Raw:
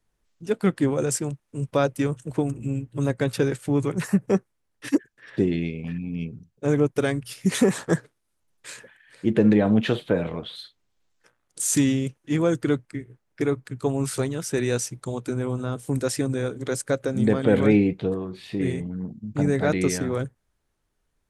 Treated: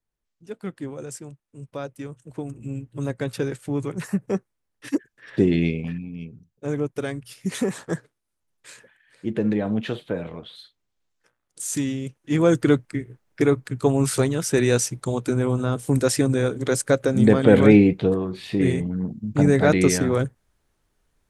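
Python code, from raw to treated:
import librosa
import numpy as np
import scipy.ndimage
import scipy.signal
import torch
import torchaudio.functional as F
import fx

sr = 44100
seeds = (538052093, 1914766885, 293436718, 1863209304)

y = fx.gain(x, sr, db=fx.line((2.16, -11.0), (2.76, -3.5), (4.87, -3.5), (5.71, 7.0), (6.12, -5.0), (11.98, -5.0), (12.51, 5.0)))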